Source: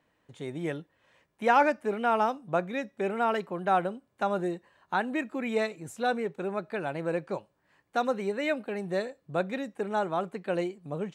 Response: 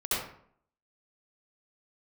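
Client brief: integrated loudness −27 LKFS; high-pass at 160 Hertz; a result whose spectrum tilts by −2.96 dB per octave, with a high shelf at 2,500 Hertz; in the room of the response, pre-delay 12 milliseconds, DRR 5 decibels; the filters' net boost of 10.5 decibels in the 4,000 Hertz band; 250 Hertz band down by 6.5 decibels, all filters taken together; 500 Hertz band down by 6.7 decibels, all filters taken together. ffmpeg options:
-filter_complex "[0:a]highpass=160,equalizer=frequency=250:width_type=o:gain=-5,equalizer=frequency=500:width_type=o:gain=-8,highshelf=frequency=2500:gain=8.5,equalizer=frequency=4000:width_type=o:gain=6,asplit=2[link_01][link_02];[1:a]atrim=start_sample=2205,adelay=12[link_03];[link_02][link_03]afir=irnorm=-1:irlink=0,volume=-13.5dB[link_04];[link_01][link_04]amix=inputs=2:normalize=0,volume=3.5dB"

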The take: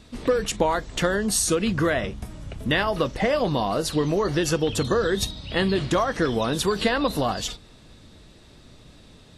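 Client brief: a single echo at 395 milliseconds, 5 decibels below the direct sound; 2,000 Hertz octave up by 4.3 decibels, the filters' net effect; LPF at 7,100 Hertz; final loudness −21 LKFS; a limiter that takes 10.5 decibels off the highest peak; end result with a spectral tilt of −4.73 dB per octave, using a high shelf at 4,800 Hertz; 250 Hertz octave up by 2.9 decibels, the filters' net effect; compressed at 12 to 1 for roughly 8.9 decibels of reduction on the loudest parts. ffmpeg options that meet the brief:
ffmpeg -i in.wav -af "lowpass=7100,equalizer=frequency=250:width_type=o:gain=4,equalizer=frequency=2000:width_type=o:gain=6,highshelf=frequency=4800:gain=-5,acompressor=threshold=-24dB:ratio=12,alimiter=limit=-24dB:level=0:latency=1,aecho=1:1:395:0.562,volume=11dB" out.wav

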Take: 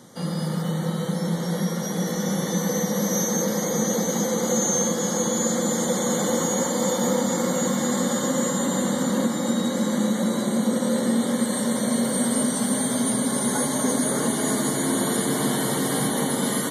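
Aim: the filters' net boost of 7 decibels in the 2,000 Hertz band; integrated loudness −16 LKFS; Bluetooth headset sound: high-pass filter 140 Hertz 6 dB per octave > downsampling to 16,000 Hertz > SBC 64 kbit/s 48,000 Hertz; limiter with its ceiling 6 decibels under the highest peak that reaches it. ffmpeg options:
ffmpeg -i in.wav -af "equalizer=frequency=2000:width_type=o:gain=8.5,alimiter=limit=-15.5dB:level=0:latency=1,highpass=frequency=140:poles=1,aresample=16000,aresample=44100,volume=10dB" -ar 48000 -c:a sbc -b:a 64k out.sbc

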